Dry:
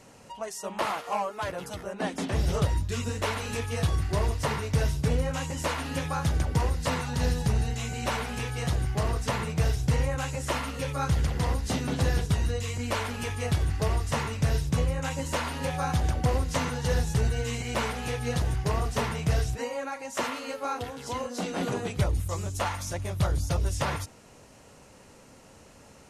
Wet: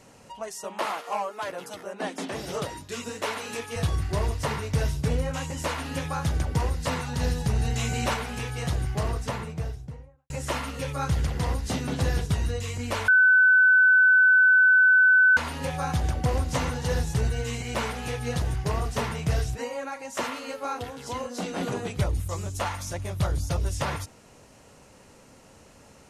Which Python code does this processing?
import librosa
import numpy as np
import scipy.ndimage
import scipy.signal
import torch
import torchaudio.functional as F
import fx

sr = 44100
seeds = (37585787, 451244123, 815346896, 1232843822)

y = fx.highpass(x, sr, hz=240.0, slope=12, at=(0.64, 3.76))
y = fx.env_flatten(y, sr, amount_pct=50, at=(7.53, 8.14))
y = fx.studio_fade_out(y, sr, start_s=8.94, length_s=1.36)
y = fx.echo_throw(y, sr, start_s=16.07, length_s=0.42, ms=290, feedback_pct=45, wet_db=-7.5)
y = fx.edit(y, sr, fx.bleep(start_s=13.08, length_s=2.29, hz=1510.0, db=-14.0), tone=tone)